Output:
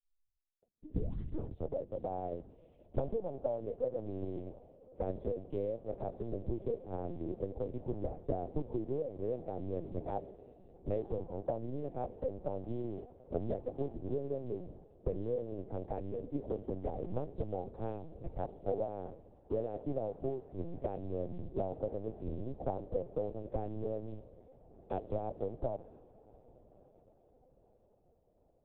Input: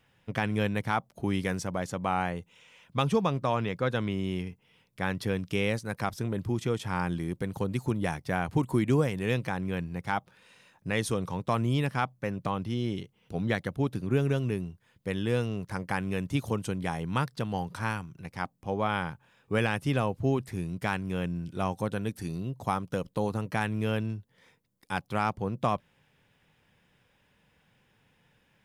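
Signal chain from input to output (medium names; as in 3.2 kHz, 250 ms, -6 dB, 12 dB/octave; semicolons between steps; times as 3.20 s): tape start-up on the opening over 2.01 s; FFT filter 140 Hz 0 dB, 630 Hz +14 dB, 1.3 kHz -20 dB; low-pass that closes with the level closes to 1.8 kHz, closed at -19 dBFS; compression 16:1, threshold -32 dBFS, peak gain reduction 21 dB; short-mantissa float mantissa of 4-bit; echo that smears into a reverb 1108 ms, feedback 70%, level -12 dB; on a send at -24 dB: reverberation RT60 2.1 s, pre-delay 130 ms; on the sum: LPC vocoder at 8 kHz pitch kept; three bands expanded up and down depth 100%; trim -1 dB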